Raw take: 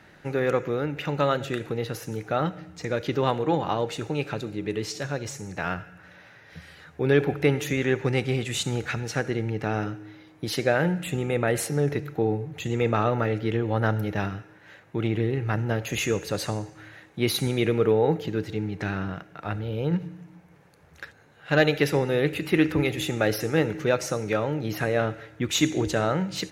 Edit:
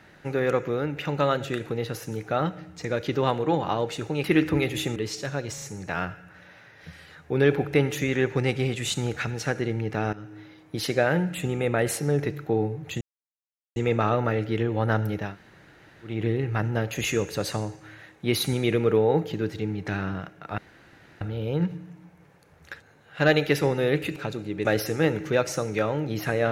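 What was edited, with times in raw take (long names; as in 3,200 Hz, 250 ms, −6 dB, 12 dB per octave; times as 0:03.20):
0:04.24–0:04.73: swap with 0:22.47–0:23.19
0:05.31: stutter 0.04 s, 3 plays
0:09.82–0:10.07: fade in, from −18 dB
0:12.70: splice in silence 0.75 s
0:14.21–0:15.07: fill with room tone, crossfade 0.24 s
0:19.52: splice in room tone 0.63 s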